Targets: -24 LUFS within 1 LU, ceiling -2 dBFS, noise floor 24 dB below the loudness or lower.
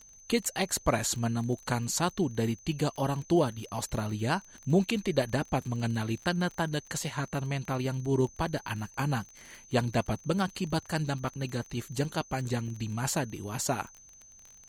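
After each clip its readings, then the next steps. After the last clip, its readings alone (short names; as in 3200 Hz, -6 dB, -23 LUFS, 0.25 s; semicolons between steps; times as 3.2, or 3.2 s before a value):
ticks 30/s; steady tone 6200 Hz; tone level -52 dBFS; loudness -31.0 LUFS; peak -12.5 dBFS; loudness target -24.0 LUFS
-> de-click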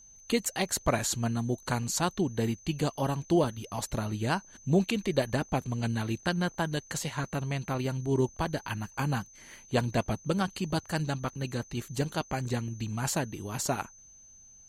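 ticks 0.068/s; steady tone 6200 Hz; tone level -52 dBFS
-> notch 6200 Hz, Q 30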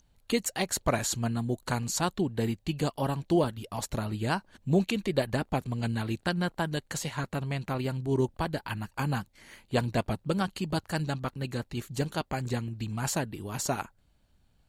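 steady tone none; loudness -31.0 LUFS; peak -12.5 dBFS; loudness target -24.0 LUFS
-> gain +7 dB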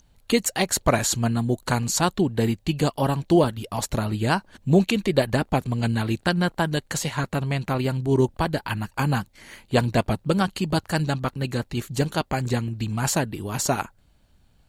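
loudness -24.0 LUFS; peak -5.5 dBFS; noise floor -60 dBFS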